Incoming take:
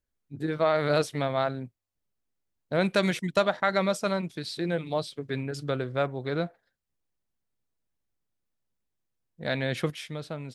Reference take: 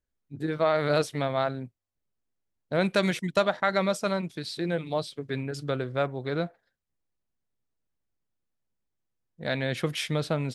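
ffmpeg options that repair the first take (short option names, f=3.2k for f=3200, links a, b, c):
-af "asetnsamples=n=441:p=0,asendcmd='9.9 volume volume 8.5dB',volume=0dB"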